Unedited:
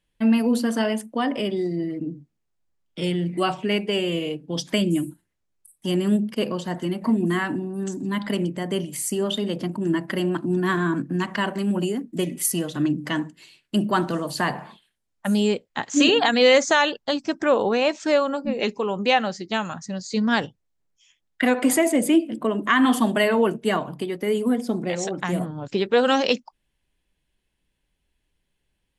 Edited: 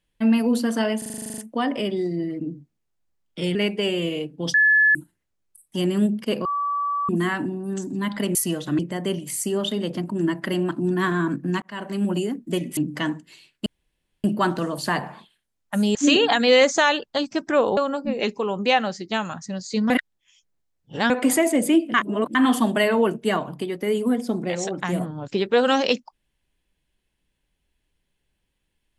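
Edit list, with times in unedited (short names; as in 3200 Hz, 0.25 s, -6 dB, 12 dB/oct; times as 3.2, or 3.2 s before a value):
0.98 stutter 0.04 s, 11 plays
3.15–3.65 cut
4.64–5.05 bleep 1720 Hz -13 dBFS
6.55–7.19 bleep 1150 Hz -21.5 dBFS
11.28–11.68 fade in
12.43–12.87 move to 8.45
13.76 insert room tone 0.58 s
15.47–15.88 cut
17.7–18.17 cut
20.3–21.5 reverse
22.34–22.75 reverse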